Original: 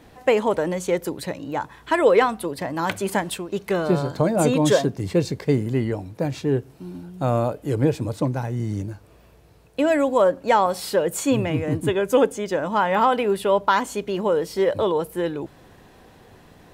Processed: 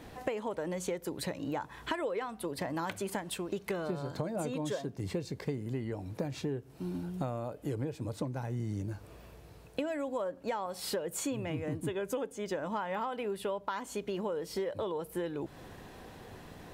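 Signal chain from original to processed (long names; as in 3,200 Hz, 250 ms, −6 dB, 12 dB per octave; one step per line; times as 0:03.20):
downward compressor 12 to 1, threshold −32 dBFS, peak gain reduction 21 dB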